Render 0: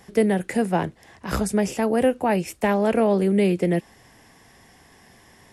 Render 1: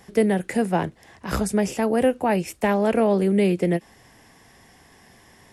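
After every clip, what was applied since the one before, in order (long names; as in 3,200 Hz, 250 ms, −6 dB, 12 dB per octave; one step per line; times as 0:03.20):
every ending faded ahead of time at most 590 dB per second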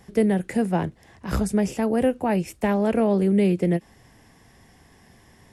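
low-shelf EQ 260 Hz +8 dB
level −4 dB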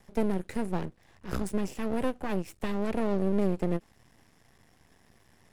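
half-wave rectification
level −4.5 dB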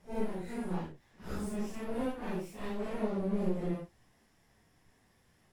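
random phases in long frames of 200 ms
level −5.5 dB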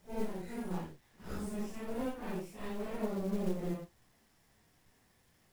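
log-companded quantiser 6 bits
level −2.5 dB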